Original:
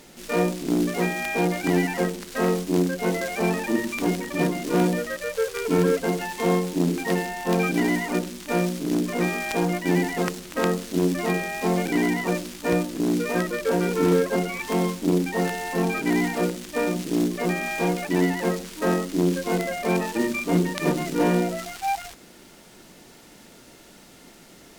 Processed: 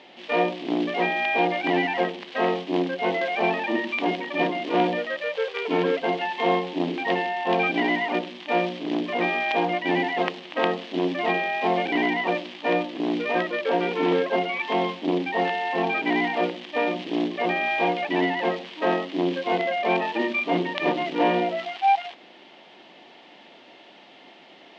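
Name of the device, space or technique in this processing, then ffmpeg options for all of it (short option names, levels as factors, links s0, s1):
phone earpiece: -af "highpass=390,equalizer=f=450:t=q:w=4:g=-5,equalizer=f=750:t=q:w=4:g=4,equalizer=f=1400:t=q:w=4:g=-9,equalizer=f=3100:t=q:w=4:g=5,lowpass=f=3500:w=0.5412,lowpass=f=3500:w=1.3066,volume=1.58"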